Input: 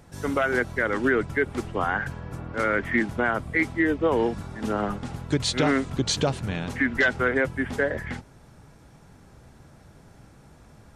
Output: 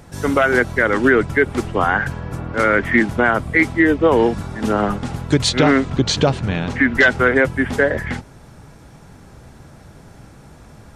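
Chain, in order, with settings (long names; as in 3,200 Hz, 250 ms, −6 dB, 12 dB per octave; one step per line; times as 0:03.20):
0:05.49–0:06.95: high-frequency loss of the air 71 metres
level +8.5 dB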